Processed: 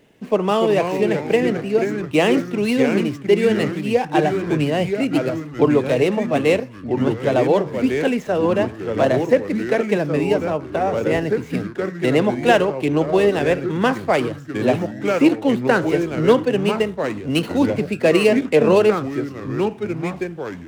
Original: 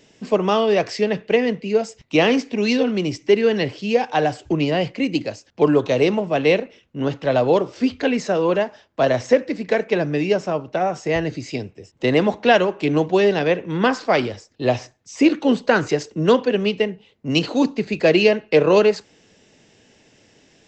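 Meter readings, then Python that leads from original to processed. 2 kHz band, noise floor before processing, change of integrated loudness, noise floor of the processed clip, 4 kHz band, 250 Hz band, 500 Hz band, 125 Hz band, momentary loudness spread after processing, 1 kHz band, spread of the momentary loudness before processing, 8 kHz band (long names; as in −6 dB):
0.0 dB, −57 dBFS, +0.5 dB, −36 dBFS, −2.5 dB, +2.0 dB, +1.0 dB, +2.5 dB, 7 LU, +0.5 dB, 8 LU, can't be measured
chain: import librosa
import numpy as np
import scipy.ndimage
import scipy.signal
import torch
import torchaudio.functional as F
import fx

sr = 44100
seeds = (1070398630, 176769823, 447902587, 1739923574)

y = scipy.signal.medfilt(x, 9)
y = fx.echo_pitch(y, sr, ms=231, semitones=-3, count=3, db_per_echo=-6.0)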